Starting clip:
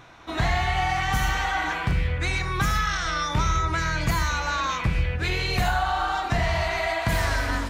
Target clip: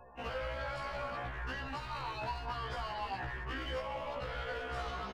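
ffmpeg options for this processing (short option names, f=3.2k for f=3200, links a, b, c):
-filter_complex "[0:a]afftfilt=real='re*gte(hypot(re,im),0.00631)':imag='im*gte(hypot(re,im),0.00631)':win_size=1024:overlap=0.75,asplit=4[a][b][c][d];[b]adelay=186,afreqshift=140,volume=-17.5dB[e];[c]adelay=372,afreqshift=280,volume=-26.1dB[f];[d]adelay=558,afreqshift=420,volume=-34.8dB[g];[a][e][f][g]amix=inputs=4:normalize=0,asetrate=32097,aresample=44100,atempo=1.37395,acrossover=split=340|910|3400[h][i][j][k];[h]acompressor=threshold=-38dB:ratio=4[l];[i]acompressor=threshold=-37dB:ratio=4[m];[j]acompressor=threshold=-39dB:ratio=4[n];[k]acompressor=threshold=-47dB:ratio=4[o];[l][m][n][o]amix=inputs=4:normalize=0,lowpass=5k,bandreject=f=50:t=h:w=6,bandreject=f=100:t=h:w=6,bandreject=f=150:t=h:w=6,bandreject=f=200:t=h:w=6,bandreject=f=250:t=h:w=6,asplit=2[p][q];[q]aeval=exprs='0.0282*(abs(mod(val(0)/0.0282+3,4)-2)-1)':c=same,volume=-6dB[r];[p][r]amix=inputs=2:normalize=0,atempo=1.5,afftfilt=real='re*1.73*eq(mod(b,3),0)':imag='im*1.73*eq(mod(b,3),0)':win_size=2048:overlap=0.75,volume=-5dB"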